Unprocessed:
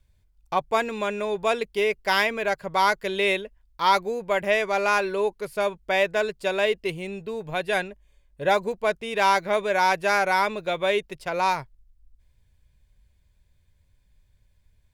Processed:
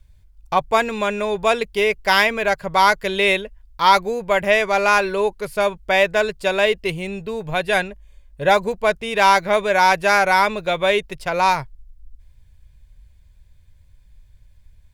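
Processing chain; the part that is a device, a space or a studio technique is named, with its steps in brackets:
low shelf boost with a cut just above (low-shelf EQ 88 Hz +8 dB; parametric band 330 Hz −3.5 dB 1.2 octaves)
level +6.5 dB

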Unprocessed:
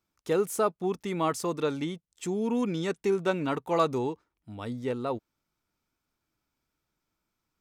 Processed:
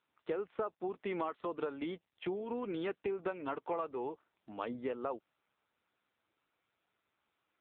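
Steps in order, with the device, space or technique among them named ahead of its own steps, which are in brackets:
0:01.84–0:03.16: noise gate −52 dBFS, range −6 dB
voicemail (band-pass filter 380–3,000 Hz; downward compressor 12 to 1, threshold −37 dBFS, peak gain reduction 17.5 dB; level +4.5 dB; AMR narrowband 6.7 kbit/s 8,000 Hz)

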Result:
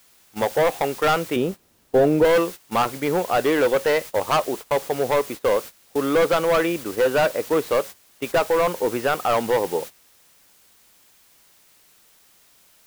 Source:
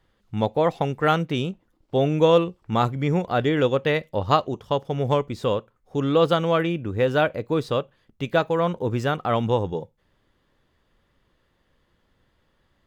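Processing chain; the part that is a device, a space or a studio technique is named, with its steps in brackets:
aircraft radio (band-pass filter 390–2,300 Hz; hard clipping −21.5 dBFS, distortion −7 dB; white noise bed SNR 16 dB; noise gate −38 dBFS, range −17 dB)
0:01.36–0:02.25: tilt shelving filter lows +7 dB, about 780 Hz
level +7 dB

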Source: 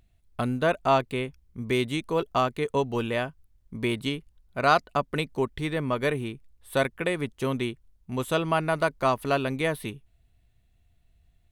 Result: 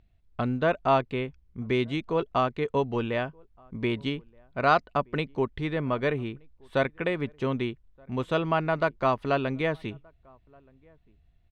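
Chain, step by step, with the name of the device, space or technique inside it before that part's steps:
shout across a valley (high-frequency loss of the air 170 metres; slap from a distant wall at 210 metres, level −29 dB)

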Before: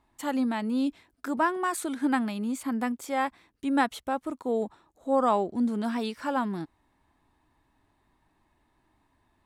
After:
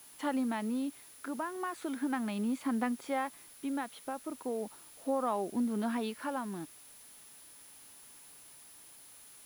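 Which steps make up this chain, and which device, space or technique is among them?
medium wave at night (band-pass filter 150–3,700 Hz; downward compressor, threshold −28 dBFS, peak gain reduction 9.5 dB; amplitude tremolo 0.37 Hz, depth 49%; steady tone 10,000 Hz −55 dBFS; white noise bed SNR 21 dB)

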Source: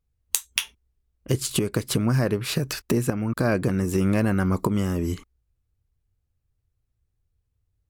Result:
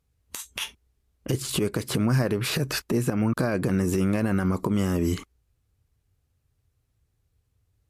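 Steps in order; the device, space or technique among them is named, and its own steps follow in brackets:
podcast mastering chain (high-pass filter 91 Hz 6 dB per octave; de-essing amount 65%; downward compressor 4 to 1, threshold −26 dBFS, peak gain reduction 7.5 dB; brickwall limiter −22.5 dBFS, peak gain reduction 7.5 dB; level +8.5 dB; MP3 96 kbit/s 32,000 Hz)

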